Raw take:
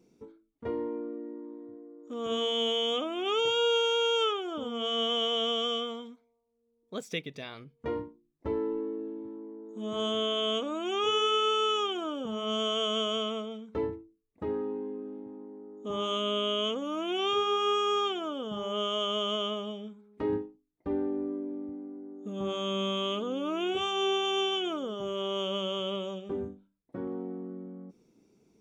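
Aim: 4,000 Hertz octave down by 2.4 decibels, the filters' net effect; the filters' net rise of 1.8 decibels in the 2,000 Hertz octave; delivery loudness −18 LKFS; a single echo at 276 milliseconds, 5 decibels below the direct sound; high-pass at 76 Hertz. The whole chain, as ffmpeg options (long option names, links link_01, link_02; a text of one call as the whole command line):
ffmpeg -i in.wav -af "highpass=76,equalizer=frequency=2000:width_type=o:gain=6,equalizer=frequency=4000:width_type=o:gain=-7,aecho=1:1:276:0.562,volume=12dB" out.wav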